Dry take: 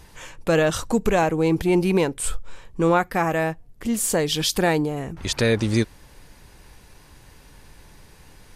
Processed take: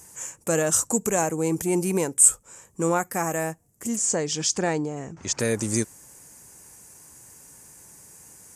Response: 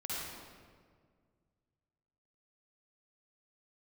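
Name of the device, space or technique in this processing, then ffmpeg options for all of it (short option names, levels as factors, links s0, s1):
budget condenser microphone: -filter_complex "[0:a]asplit=3[s0][s1][s2];[s0]afade=t=out:st=3.95:d=0.02[s3];[s1]lowpass=f=5800:w=0.5412,lowpass=f=5800:w=1.3066,afade=t=in:st=3.95:d=0.02,afade=t=out:st=5.39:d=0.02[s4];[s2]afade=t=in:st=5.39:d=0.02[s5];[s3][s4][s5]amix=inputs=3:normalize=0,highpass=110,highshelf=f=5300:t=q:w=3:g=12,volume=0.596"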